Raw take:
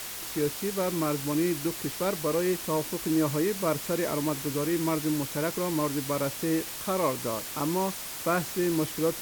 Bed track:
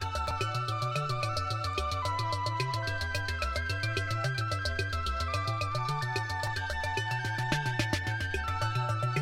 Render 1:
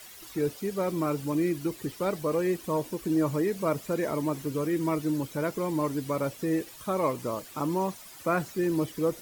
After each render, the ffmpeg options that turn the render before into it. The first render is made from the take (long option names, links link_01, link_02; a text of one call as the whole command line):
ffmpeg -i in.wav -af "afftdn=noise_reduction=13:noise_floor=-38" out.wav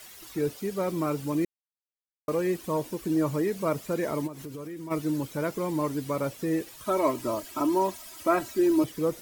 ffmpeg -i in.wav -filter_complex "[0:a]asplit=3[link_01][link_02][link_03];[link_01]afade=type=out:start_time=4.26:duration=0.02[link_04];[link_02]acompressor=threshold=-36dB:ratio=6:attack=3.2:release=140:knee=1:detection=peak,afade=type=in:start_time=4.26:duration=0.02,afade=type=out:start_time=4.9:duration=0.02[link_05];[link_03]afade=type=in:start_time=4.9:duration=0.02[link_06];[link_04][link_05][link_06]amix=inputs=3:normalize=0,asettb=1/sr,asplit=3[link_07][link_08][link_09];[link_07]atrim=end=6.864[link_10];[link_08]atrim=start=6.86:end=8.84,asetpts=PTS-STARTPTS,afade=type=in:duration=0.004:curve=qsin,afade=type=out:start_time=1.976:duration=0.004:curve=qsin,aecho=1:1:3.1:0.91,atrim=end_sample=87318[link_11];[link_09]atrim=start=8.836[link_12];[link_10][link_11]acrossfade=duration=0.004:curve1=hsin:curve2=qsin[link_13];[link_13][link_12]acrossfade=duration=0.004:curve1=qsin:curve2=hsin,asplit=3[link_14][link_15][link_16];[link_14]atrim=end=1.45,asetpts=PTS-STARTPTS,afade=type=out:start_time=1.446:duration=0.004:curve=hsin[link_17];[link_15]atrim=start=1.45:end=2.28,asetpts=PTS-STARTPTS,volume=0[link_18];[link_16]atrim=start=2.28,asetpts=PTS-STARTPTS,afade=type=in:duration=0.004:curve=hsin[link_19];[link_17][link_18][link_19]concat=n=3:v=0:a=1" out.wav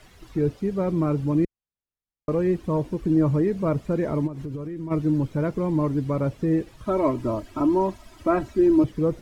ffmpeg -i in.wav -af "aemphasis=mode=reproduction:type=riaa" out.wav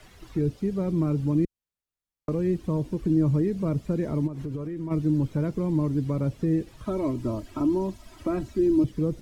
ffmpeg -i in.wav -filter_complex "[0:a]acrossover=split=350|3000[link_01][link_02][link_03];[link_02]acompressor=threshold=-36dB:ratio=4[link_04];[link_01][link_04][link_03]amix=inputs=3:normalize=0" out.wav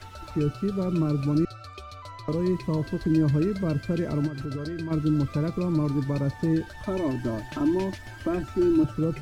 ffmpeg -i in.wav -i bed.wav -filter_complex "[1:a]volume=-10dB[link_01];[0:a][link_01]amix=inputs=2:normalize=0" out.wav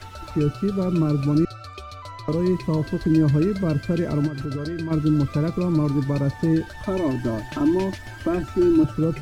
ffmpeg -i in.wav -af "volume=4dB" out.wav